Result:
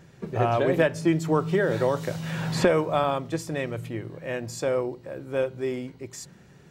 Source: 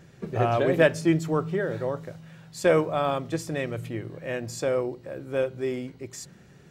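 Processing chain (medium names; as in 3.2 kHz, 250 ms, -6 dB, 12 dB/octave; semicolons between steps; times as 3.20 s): peaking EQ 940 Hz +4 dB 0.29 oct; 0.76–3.04 s: three bands compressed up and down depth 100%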